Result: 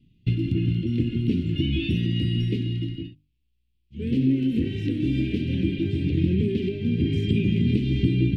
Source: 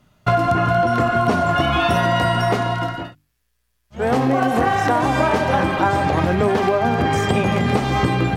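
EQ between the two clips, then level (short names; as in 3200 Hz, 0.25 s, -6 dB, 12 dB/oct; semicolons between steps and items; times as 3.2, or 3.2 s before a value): elliptic band-stop 330–2700 Hz, stop band 50 dB; air absorption 480 m; high shelf 4300 Hz +8.5 dB; 0.0 dB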